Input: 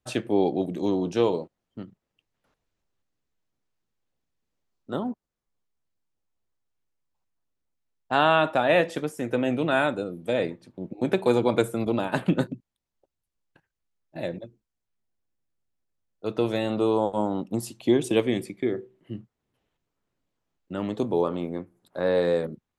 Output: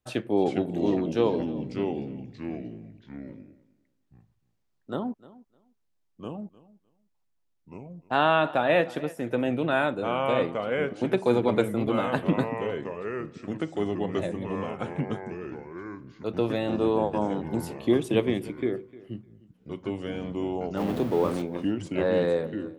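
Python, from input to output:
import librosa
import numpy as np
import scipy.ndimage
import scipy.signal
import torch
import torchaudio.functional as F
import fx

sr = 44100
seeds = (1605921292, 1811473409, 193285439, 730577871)

p1 = fx.zero_step(x, sr, step_db=-31.5, at=(20.77, 21.42))
p2 = fx.echo_pitch(p1, sr, ms=378, semitones=-3, count=3, db_per_echo=-6.0)
p3 = fx.dynamic_eq(p2, sr, hz=7400.0, q=0.93, threshold_db=-53.0, ratio=4.0, max_db=-7)
p4 = p3 + fx.echo_feedback(p3, sr, ms=304, feedback_pct=17, wet_db=-20.0, dry=0)
y = F.gain(torch.from_numpy(p4), -1.5).numpy()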